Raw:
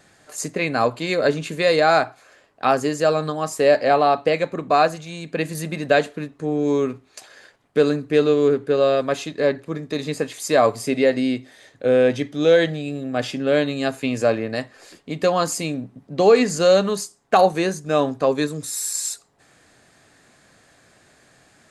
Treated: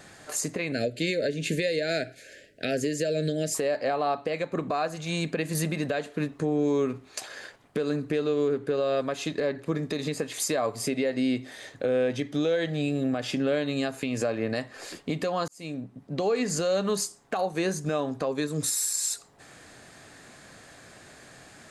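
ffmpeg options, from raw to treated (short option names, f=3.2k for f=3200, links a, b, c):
-filter_complex "[0:a]asettb=1/sr,asplit=3[a][b][c];[a]atrim=end=0.724[d];[b]atrim=start=0.72:end=3.55,asetpts=PTS-STARTPTS,afade=t=in:d=0.004:c=qsin,afade=t=out:st=2.826:d=0.004:c=qsin,asuperstop=centerf=1000:order=8:qfactor=0.99[e];[c]atrim=start=3.546[f];[d][e]acrossfade=d=0.004:c1=hsin:c2=qsin[g];[g][f]acrossfade=d=0.004:c1=qsin:c2=hsin,asplit=2[h][i];[h]atrim=end=15.48,asetpts=PTS-STARTPTS,afade=t=out:st=15.476:d=0.004:c=hsin[j];[i]atrim=start=15.48,asetpts=PTS-STARTPTS,afade=t=in:d=1.16[k];[j][k]concat=n=2:v=0:a=1,acompressor=threshold=-27dB:ratio=4,alimiter=limit=-22.5dB:level=0:latency=1:release=202,volume=5dB"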